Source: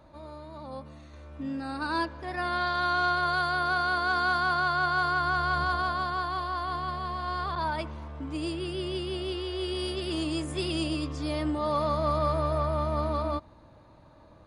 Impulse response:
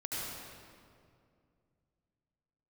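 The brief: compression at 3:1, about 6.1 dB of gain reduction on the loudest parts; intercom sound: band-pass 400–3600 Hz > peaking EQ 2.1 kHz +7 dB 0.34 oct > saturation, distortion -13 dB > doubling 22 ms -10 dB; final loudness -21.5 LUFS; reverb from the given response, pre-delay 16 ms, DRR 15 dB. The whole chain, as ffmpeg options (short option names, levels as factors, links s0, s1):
-filter_complex "[0:a]acompressor=threshold=0.0282:ratio=3,asplit=2[s0][s1];[1:a]atrim=start_sample=2205,adelay=16[s2];[s1][s2]afir=irnorm=-1:irlink=0,volume=0.119[s3];[s0][s3]amix=inputs=2:normalize=0,highpass=400,lowpass=3600,equalizer=f=2100:t=o:w=0.34:g=7,asoftclip=threshold=0.0266,asplit=2[s4][s5];[s5]adelay=22,volume=0.316[s6];[s4][s6]amix=inputs=2:normalize=0,volume=5.96"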